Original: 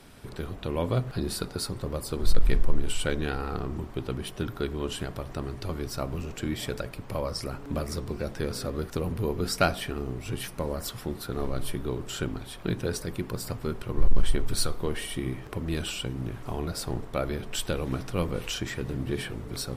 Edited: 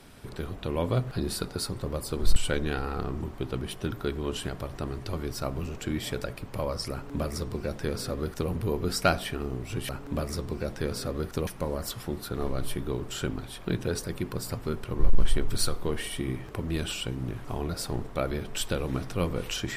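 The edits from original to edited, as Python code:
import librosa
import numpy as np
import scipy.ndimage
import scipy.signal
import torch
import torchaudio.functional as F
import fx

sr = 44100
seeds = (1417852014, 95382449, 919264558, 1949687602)

y = fx.edit(x, sr, fx.cut(start_s=2.36, length_s=0.56),
    fx.duplicate(start_s=7.48, length_s=1.58, to_s=10.45), tone=tone)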